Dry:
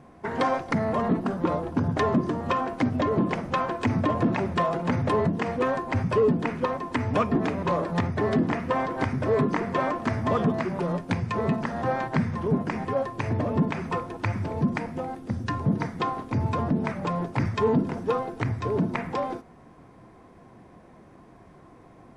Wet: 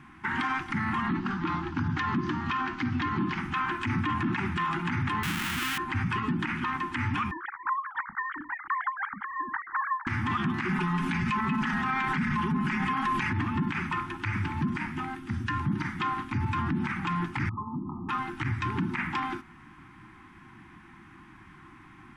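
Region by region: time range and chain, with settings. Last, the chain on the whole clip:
1.07–3.39 Chebyshev low-pass 6400 Hz, order 3 + bell 4400 Hz +5.5 dB 0.5 oct
5.23–5.78 half-waves squared off + high shelf 5200 Hz +7 dB
7.31–10.07 sine-wave speech + bell 280 Hz -14 dB 1.8 oct + fixed phaser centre 1100 Hz, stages 4
10.69–13.33 comb 4.7 ms, depth 84% + fast leveller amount 50%
17.49–18.09 compressor 4:1, threshold -31 dBFS + brick-wall FIR low-pass 1300 Hz
whole clip: elliptic band-stop 350–820 Hz, stop band 40 dB; band shelf 2000 Hz +10 dB; limiter -20.5 dBFS

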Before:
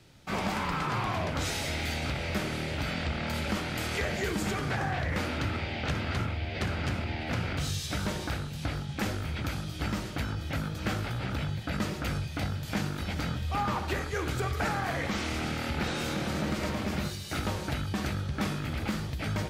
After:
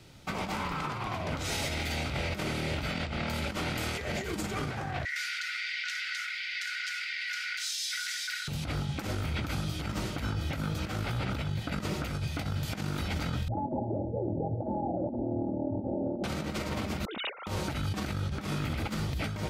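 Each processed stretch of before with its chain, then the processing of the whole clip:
5.05–8.48 rippled Chebyshev high-pass 1400 Hz, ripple 6 dB + comb 4.7 ms, depth 50% + fast leveller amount 70%
13.48–16.24 steep low-pass 780 Hz 96 dB/oct + frequency shift +37 Hz + comb 3.4 ms
17.05–17.47 sine-wave speech + negative-ratio compressor -44 dBFS
whole clip: negative-ratio compressor -33 dBFS, ratio -0.5; notch 1700 Hz, Q 13; limiter -25 dBFS; gain +2 dB

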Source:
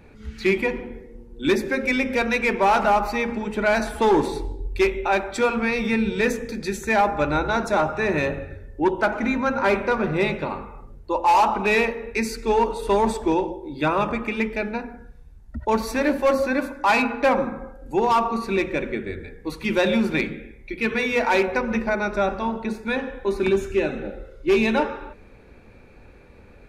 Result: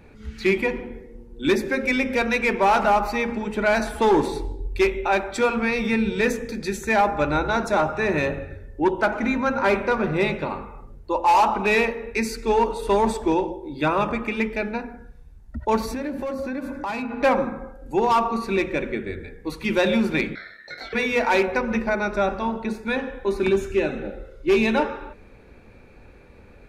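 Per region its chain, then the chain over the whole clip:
15.85–17.23 bell 120 Hz +11 dB 3 oct + compressor, threshold -26 dBFS
20.35–20.93 compressor 16:1, threshold -30 dBFS + ring modulator 1800 Hz + doubler 20 ms -3 dB
whole clip: dry

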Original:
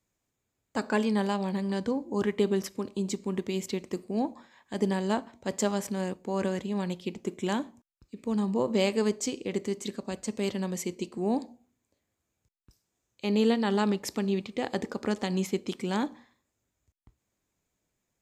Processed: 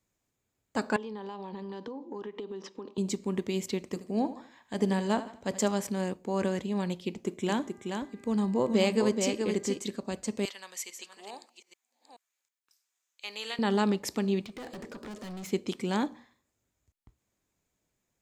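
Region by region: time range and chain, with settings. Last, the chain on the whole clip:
0.96–2.98 speaker cabinet 270–5000 Hz, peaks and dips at 440 Hz +4 dB, 640 Hz -8 dB, 920 Hz +6 dB, 1500 Hz -5 dB, 2200 Hz -9 dB, 4500 Hz -6 dB + compressor 12:1, threshold -35 dBFS
3.88–5.68 notch 360 Hz + feedback echo 78 ms, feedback 38%, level -14 dB
7.48–9.78 buzz 400 Hz, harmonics 5, -60 dBFS -3 dB/oct + echo 0.427 s -5.5 dB
10.45–13.59 reverse delay 0.429 s, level -9 dB + HPF 1300 Hz
14.45–15.52 notch 830 Hz, Q 6.7 + compressor, threshold -29 dBFS + hard clip -38.5 dBFS
whole clip: dry

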